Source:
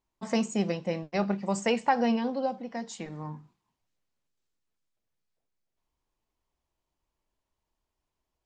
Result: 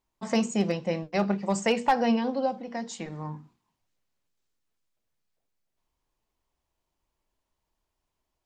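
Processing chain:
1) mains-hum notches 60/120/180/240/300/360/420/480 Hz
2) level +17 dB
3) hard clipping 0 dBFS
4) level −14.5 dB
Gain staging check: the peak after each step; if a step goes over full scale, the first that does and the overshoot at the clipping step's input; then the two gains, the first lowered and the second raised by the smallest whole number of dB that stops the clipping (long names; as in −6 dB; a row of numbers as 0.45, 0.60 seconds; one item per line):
−12.0, +5.0, 0.0, −14.5 dBFS
step 2, 5.0 dB
step 2 +12 dB, step 4 −9.5 dB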